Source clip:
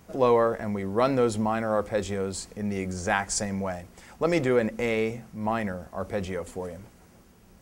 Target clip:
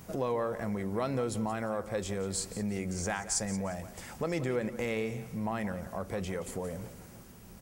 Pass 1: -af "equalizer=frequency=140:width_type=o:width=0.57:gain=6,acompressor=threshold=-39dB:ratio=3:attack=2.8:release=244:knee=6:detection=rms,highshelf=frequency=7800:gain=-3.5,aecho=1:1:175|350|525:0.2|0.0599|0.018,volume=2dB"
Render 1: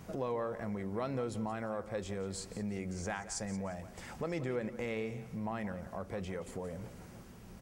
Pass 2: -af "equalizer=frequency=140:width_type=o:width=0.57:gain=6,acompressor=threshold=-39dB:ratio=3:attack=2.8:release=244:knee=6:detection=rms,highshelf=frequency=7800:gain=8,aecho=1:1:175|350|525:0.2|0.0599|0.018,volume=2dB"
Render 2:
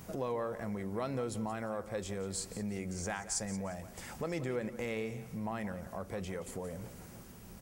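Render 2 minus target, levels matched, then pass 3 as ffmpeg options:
downward compressor: peak gain reduction +4.5 dB
-af "equalizer=frequency=140:width_type=o:width=0.57:gain=6,acompressor=threshold=-32.5dB:ratio=3:attack=2.8:release=244:knee=6:detection=rms,highshelf=frequency=7800:gain=8,aecho=1:1:175|350|525:0.2|0.0599|0.018,volume=2dB"

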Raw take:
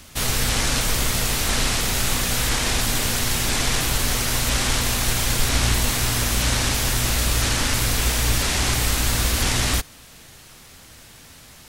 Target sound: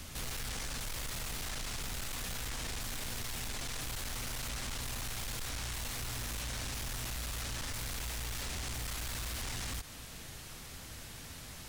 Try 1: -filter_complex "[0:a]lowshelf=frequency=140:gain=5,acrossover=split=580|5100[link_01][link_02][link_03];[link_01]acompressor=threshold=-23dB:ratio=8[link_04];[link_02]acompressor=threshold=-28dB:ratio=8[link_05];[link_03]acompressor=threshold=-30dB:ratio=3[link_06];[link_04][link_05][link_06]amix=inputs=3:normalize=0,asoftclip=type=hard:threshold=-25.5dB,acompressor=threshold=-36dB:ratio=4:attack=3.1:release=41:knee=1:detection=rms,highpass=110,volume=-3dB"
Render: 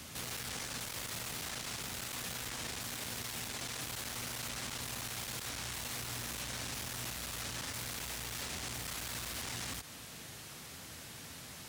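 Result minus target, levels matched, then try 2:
125 Hz band −4.0 dB
-filter_complex "[0:a]lowshelf=frequency=140:gain=5,acrossover=split=580|5100[link_01][link_02][link_03];[link_01]acompressor=threshold=-23dB:ratio=8[link_04];[link_02]acompressor=threshold=-28dB:ratio=8[link_05];[link_03]acompressor=threshold=-30dB:ratio=3[link_06];[link_04][link_05][link_06]amix=inputs=3:normalize=0,asoftclip=type=hard:threshold=-25.5dB,acompressor=threshold=-36dB:ratio=4:attack=3.1:release=41:knee=1:detection=rms,volume=-3dB"

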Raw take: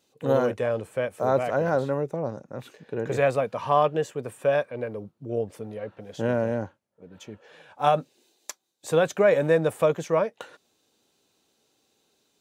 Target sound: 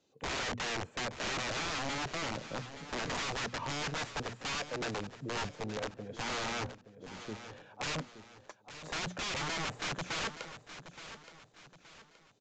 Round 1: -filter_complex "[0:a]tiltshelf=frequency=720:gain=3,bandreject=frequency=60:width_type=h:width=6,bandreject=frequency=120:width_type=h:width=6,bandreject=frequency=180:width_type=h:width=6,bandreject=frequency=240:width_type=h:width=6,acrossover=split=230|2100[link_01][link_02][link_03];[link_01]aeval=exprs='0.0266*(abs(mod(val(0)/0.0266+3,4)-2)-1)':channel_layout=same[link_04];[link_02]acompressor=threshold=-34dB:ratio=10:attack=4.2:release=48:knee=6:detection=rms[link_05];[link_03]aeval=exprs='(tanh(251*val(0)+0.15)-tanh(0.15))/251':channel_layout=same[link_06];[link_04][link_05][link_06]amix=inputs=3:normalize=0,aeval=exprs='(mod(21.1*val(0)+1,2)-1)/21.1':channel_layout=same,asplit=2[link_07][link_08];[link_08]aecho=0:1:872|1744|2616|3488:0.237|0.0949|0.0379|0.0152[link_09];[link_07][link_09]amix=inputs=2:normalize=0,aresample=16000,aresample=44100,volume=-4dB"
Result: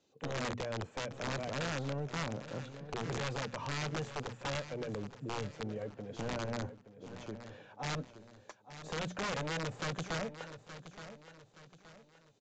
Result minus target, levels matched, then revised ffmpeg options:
downward compressor: peak gain reduction +10.5 dB
-filter_complex "[0:a]tiltshelf=frequency=720:gain=3,bandreject=frequency=60:width_type=h:width=6,bandreject=frequency=120:width_type=h:width=6,bandreject=frequency=180:width_type=h:width=6,bandreject=frequency=240:width_type=h:width=6,acrossover=split=230|2100[link_01][link_02][link_03];[link_01]aeval=exprs='0.0266*(abs(mod(val(0)/0.0266+3,4)-2)-1)':channel_layout=same[link_04];[link_02]acompressor=threshold=-22.5dB:ratio=10:attack=4.2:release=48:knee=6:detection=rms[link_05];[link_03]aeval=exprs='(tanh(251*val(0)+0.15)-tanh(0.15))/251':channel_layout=same[link_06];[link_04][link_05][link_06]amix=inputs=3:normalize=0,aeval=exprs='(mod(21.1*val(0)+1,2)-1)/21.1':channel_layout=same,asplit=2[link_07][link_08];[link_08]aecho=0:1:872|1744|2616|3488:0.237|0.0949|0.0379|0.0152[link_09];[link_07][link_09]amix=inputs=2:normalize=0,aresample=16000,aresample=44100,volume=-4dB"

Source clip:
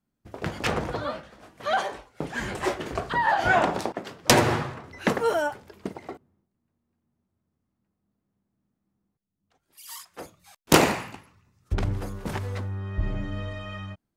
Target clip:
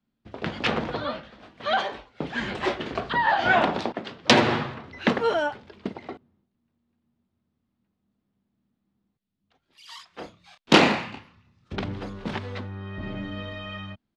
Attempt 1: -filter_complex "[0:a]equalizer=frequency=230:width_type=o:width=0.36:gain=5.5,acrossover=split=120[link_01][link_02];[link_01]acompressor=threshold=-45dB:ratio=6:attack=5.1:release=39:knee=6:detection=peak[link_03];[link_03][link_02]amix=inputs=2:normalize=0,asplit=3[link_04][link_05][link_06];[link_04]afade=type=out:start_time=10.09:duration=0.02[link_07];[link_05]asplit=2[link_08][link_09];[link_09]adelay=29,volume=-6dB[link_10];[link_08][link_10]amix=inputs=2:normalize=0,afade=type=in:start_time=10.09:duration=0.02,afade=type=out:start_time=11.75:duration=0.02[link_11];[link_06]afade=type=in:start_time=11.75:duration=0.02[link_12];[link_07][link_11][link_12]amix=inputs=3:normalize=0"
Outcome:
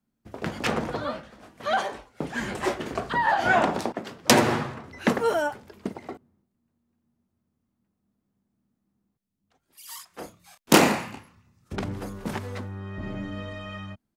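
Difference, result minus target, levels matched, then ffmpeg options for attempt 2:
4,000 Hz band −3.0 dB
-filter_complex "[0:a]lowpass=frequency=3700:width_type=q:width=1.8,equalizer=frequency=230:width_type=o:width=0.36:gain=5.5,acrossover=split=120[link_01][link_02];[link_01]acompressor=threshold=-45dB:ratio=6:attack=5.1:release=39:knee=6:detection=peak[link_03];[link_03][link_02]amix=inputs=2:normalize=0,asplit=3[link_04][link_05][link_06];[link_04]afade=type=out:start_time=10.09:duration=0.02[link_07];[link_05]asplit=2[link_08][link_09];[link_09]adelay=29,volume=-6dB[link_10];[link_08][link_10]amix=inputs=2:normalize=0,afade=type=in:start_time=10.09:duration=0.02,afade=type=out:start_time=11.75:duration=0.02[link_11];[link_06]afade=type=in:start_time=11.75:duration=0.02[link_12];[link_07][link_11][link_12]amix=inputs=3:normalize=0"

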